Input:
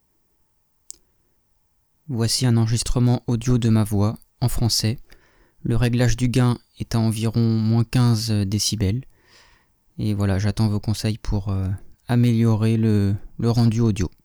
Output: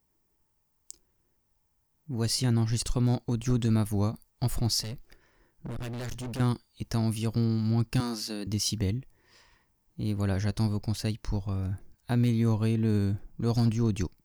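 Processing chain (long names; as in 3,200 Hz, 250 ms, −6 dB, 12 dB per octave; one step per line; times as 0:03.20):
0:04.83–0:06.40: gain into a clipping stage and back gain 26.5 dB
0:08.00–0:08.47: high-pass filter 240 Hz 24 dB per octave
level −7.5 dB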